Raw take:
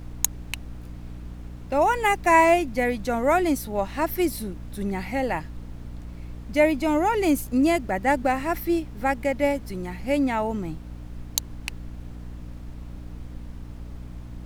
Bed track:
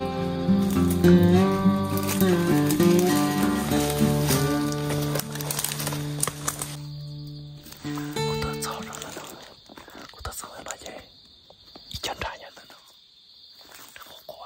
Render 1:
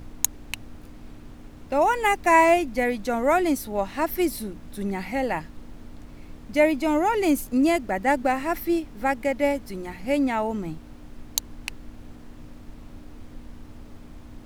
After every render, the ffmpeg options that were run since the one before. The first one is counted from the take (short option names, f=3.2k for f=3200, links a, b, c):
-af "bandreject=f=60:t=h:w=6,bandreject=f=120:t=h:w=6,bandreject=f=180:t=h:w=6"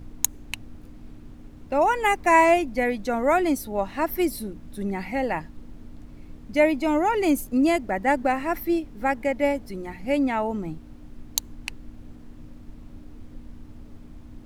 -af "afftdn=nr=6:nf=-44"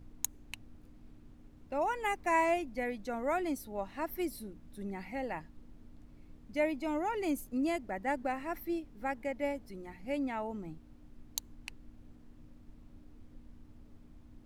-af "volume=-12dB"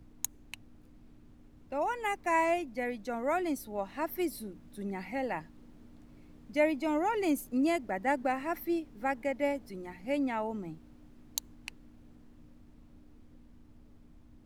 -filter_complex "[0:a]acrossover=split=120[a][b];[a]alimiter=level_in=28dB:limit=-24dB:level=0:latency=1,volume=-28dB[c];[b]dynaudnorm=f=550:g=13:m=4dB[d];[c][d]amix=inputs=2:normalize=0"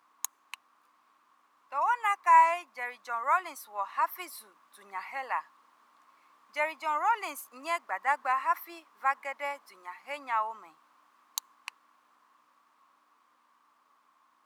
-af "highpass=f=1.1k:t=q:w=7.9"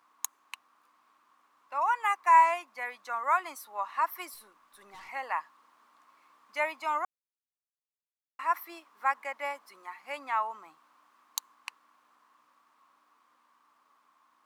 -filter_complex "[0:a]asettb=1/sr,asplit=3[a][b][c];[a]atrim=end=4.344[d];[b]atrim=start=4.34:end=5.09,asetpts=PTS-STARTPTS,afade=t=in:d=0.004:c=qsin,afade=t=out:st=0.746:d=0.004:c=qsin,aeval=exprs='(tanh(200*val(0)+0.25)-tanh(0.25))/200':c=same[e];[c]atrim=start=5.086[f];[d][e]acrossfade=d=0.004:c1=hsin:c2=qsin[g];[g][f]acrossfade=d=0.004:c1=qsin:c2=hsin,asplit=3[h][i][j];[h]atrim=end=7.05,asetpts=PTS-STARTPTS,afade=t=out:st=7.046:d=0.004:c=hsin[k];[i]atrim=start=7.05:end=8.39,asetpts=PTS-STARTPTS,volume=0[l];[j]atrim=start=8.39,asetpts=PTS-STARTPTS,afade=t=in:d=0.004:c=hsin[m];[k][l][m]concat=n=3:v=0:a=1"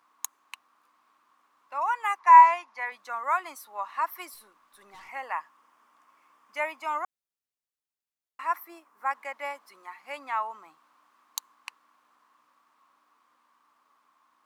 -filter_complex "[0:a]asettb=1/sr,asplit=3[a][b][c];[a]atrim=end=2.194[d];[b]atrim=start=2.19:end=2.92,asetpts=PTS-STARTPTS,afade=t=in:d=0.004:c=qsin,afade=t=out:st=0.726:d=0.004:c=qsin,highpass=250,equalizer=f=290:t=q:w=4:g=-4,equalizer=f=590:t=q:w=4:g=-4,equalizer=f=920:t=q:w=4:g=9,equalizer=f=1.9k:t=q:w=4:g=4,equalizer=f=5.5k:t=q:w=4:g=3,equalizer=f=8.1k:t=q:w=4:g=-10,lowpass=f=9.8k:w=0.5412,lowpass=f=9.8k:w=1.3066[e];[c]atrim=start=2.916[f];[d][e]acrossfade=d=0.004:c1=hsin:c2=qsin[g];[g][f]acrossfade=d=0.004:c1=qsin:c2=hsin,asettb=1/sr,asplit=3[h][i][j];[h]atrim=end=5.024[k];[i]atrim=start=5.02:end=6.91,asetpts=PTS-STARTPTS,afade=t=in:d=0.004:c=qsin,afade=t=out:st=1.886:d=0.004:c=qsin,equalizer=f=4.1k:w=5.3:g=-8[l];[j]atrim=start=6.906[m];[k][l]acrossfade=d=0.004:c1=hsin:c2=qsin[n];[n][m]acrossfade=d=0.004:c1=qsin:c2=hsin,asettb=1/sr,asplit=3[o][p][q];[o]atrim=end=8.564[r];[p]atrim=start=8.56:end=9.11,asetpts=PTS-STARTPTS,afade=t=in:d=0.004:c=qsin,afade=t=out:st=0.546:d=0.004:c=qsin,equalizer=f=3.6k:w=0.92:g=-9.5[s];[q]atrim=start=9.106[t];[r][s]acrossfade=d=0.004:c1=hsin:c2=qsin[u];[u][t]acrossfade=d=0.004:c1=qsin:c2=hsin"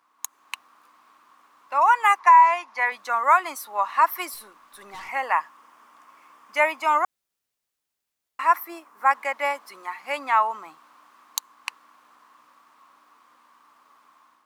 -af "alimiter=limit=-16.5dB:level=0:latency=1:release=339,dynaudnorm=f=130:g=5:m=10dB"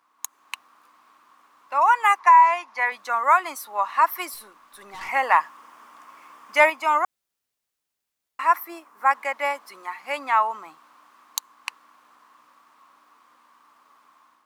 -filter_complex "[0:a]asettb=1/sr,asplit=3[a][b][c];[a]atrim=end=5.014[d];[b]atrim=start=5.01:end=6.7,asetpts=PTS-STARTPTS,afade=t=in:d=0.004:c=qsin,afade=t=out:st=1.686:d=0.004:c=qsin,acontrast=22[e];[c]atrim=start=6.696[f];[d][e]acrossfade=d=0.004:c1=hsin:c2=qsin[g];[g][f]acrossfade=d=0.004:c1=qsin:c2=hsin"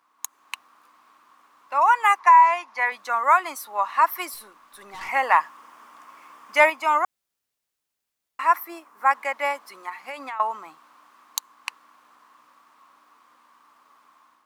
-filter_complex "[0:a]asettb=1/sr,asplit=3[a][b][c];[a]atrim=end=9.894[d];[b]atrim=start=9.89:end=10.4,asetpts=PTS-STARTPTS,afade=t=in:d=0.004:c=qsin,afade=t=out:st=0.506:d=0.004:c=qsin,acompressor=threshold=-29dB:ratio=12:attack=3.2:release=140:knee=1:detection=peak[e];[c]atrim=start=10.396[f];[d][e]acrossfade=d=0.004:c1=hsin:c2=qsin[g];[g][f]acrossfade=d=0.004:c1=qsin:c2=hsin"